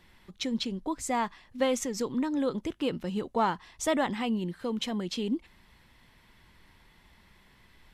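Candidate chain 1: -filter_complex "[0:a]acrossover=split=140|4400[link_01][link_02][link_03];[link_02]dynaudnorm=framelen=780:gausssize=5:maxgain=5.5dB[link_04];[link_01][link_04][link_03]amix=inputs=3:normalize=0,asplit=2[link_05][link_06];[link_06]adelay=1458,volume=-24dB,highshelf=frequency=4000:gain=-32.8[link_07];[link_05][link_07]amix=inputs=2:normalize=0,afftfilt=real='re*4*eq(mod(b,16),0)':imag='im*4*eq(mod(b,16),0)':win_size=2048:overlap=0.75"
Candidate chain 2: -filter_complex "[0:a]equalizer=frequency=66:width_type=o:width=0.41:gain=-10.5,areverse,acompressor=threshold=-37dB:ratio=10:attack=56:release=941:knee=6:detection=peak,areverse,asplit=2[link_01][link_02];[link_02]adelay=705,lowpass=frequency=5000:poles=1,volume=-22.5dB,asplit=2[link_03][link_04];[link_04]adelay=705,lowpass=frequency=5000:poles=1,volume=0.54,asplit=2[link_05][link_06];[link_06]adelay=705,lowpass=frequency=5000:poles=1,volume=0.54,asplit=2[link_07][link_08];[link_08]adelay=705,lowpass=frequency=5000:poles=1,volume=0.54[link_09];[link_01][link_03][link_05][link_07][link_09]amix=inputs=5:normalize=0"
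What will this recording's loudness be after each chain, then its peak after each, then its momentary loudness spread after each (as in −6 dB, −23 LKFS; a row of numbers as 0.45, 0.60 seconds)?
−32.0, −41.0 LKFS; −10.5, −26.0 dBFS; 13, 20 LU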